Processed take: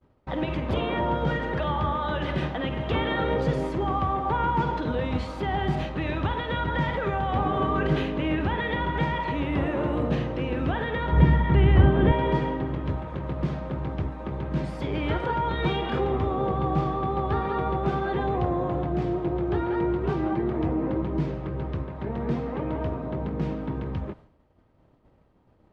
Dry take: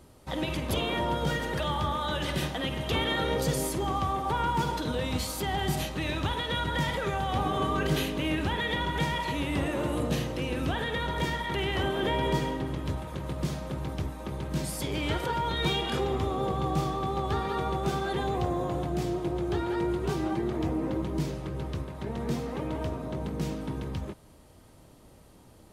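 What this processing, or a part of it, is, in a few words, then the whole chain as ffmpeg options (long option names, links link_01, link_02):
hearing-loss simulation: -filter_complex "[0:a]asettb=1/sr,asplit=3[link_01][link_02][link_03];[link_01]atrim=end=11.124[link_04];[link_02]atrim=start=11.12:end=12.12,asetpts=PTS-STARTPTS,afade=type=in:duration=0.004:curve=qsin,afade=type=out:start_time=0.996:duration=0.004:curve=qsin,bass=frequency=250:gain=14,treble=frequency=4000:gain=-7[link_05];[link_03]atrim=start=12.116[link_06];[link_04][link_05]acrossfade=duration=0.004:curve1=hsin:curve2=qsin[link_07];[link_07][link_06]acrossfade=duration=0.004:curve1=qsin:curve2=hsin,lowpass=2100,agate=range=-33dB:threshold=-46dB:ratio=3:detection=peak,volume=3.5dB"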